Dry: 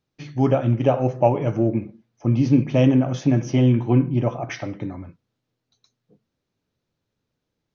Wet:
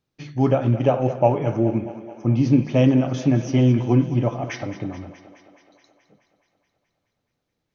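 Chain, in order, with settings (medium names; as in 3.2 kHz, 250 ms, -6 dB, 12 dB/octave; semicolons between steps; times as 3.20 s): thinning echo 213 ms, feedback 69%, high-pass 230 Hz, level -13 dB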